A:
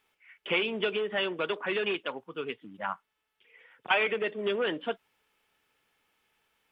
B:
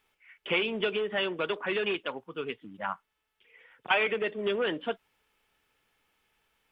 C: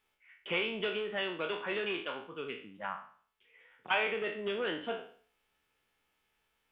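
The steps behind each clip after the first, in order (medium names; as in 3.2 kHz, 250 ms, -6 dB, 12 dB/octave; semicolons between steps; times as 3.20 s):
bass shelf 68 Hz +11 dB
spectral sustain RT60 0.49 s; trim -6.5 dB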